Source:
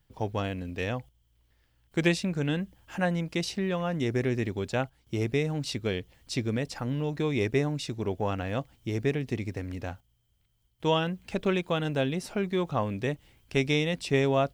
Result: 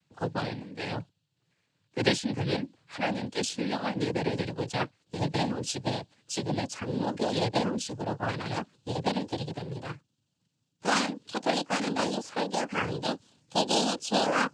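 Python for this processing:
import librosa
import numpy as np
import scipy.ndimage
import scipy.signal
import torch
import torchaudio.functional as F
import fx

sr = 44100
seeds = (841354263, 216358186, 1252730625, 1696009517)

y = fx.pitch_glide(x, sr, semitones=9.0, runs='starting unshifted')
y = fx.noise_vocoder(y, sr, seeds[0], bands=8)
y = fx.dynamic_eq(y, sr, hz=4400.0, q=0.9, threshold_db=-49.0, ratio=4.0, max_db=4)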